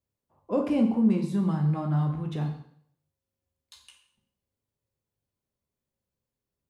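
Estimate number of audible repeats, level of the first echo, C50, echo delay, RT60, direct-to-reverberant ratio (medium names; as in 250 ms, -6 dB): no echo, no echo, 7.5 dB, no echo, 0.65 s, 2.0 dB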